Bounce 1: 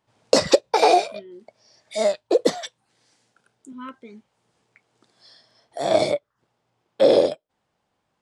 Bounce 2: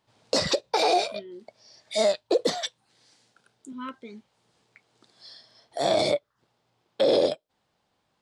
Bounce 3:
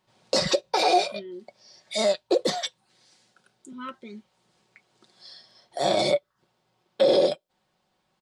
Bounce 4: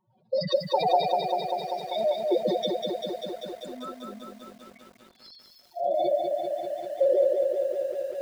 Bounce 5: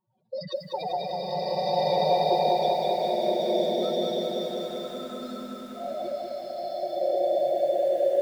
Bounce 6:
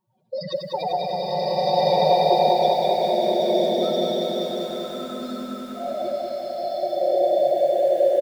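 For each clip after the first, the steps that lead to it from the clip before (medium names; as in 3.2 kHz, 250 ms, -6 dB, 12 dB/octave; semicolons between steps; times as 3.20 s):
peaking EQ 4.1 kHz +5.5 dB 0.82 oct; peak limiter -13 dBFS, peak gain reduction 11.5 dB
comb 5.4 ms, depth 50%
spectral contrast enhancement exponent 3.3; bit-crushed delay 196 ms, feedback 80%, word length 9-bit, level -4 dB; trim -2.5 dB
swelling reverb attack 1470 ms, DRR -9.5 dB; trim -7.5 dB
delay 92 ms -9.5 dB; trim +4.5 dB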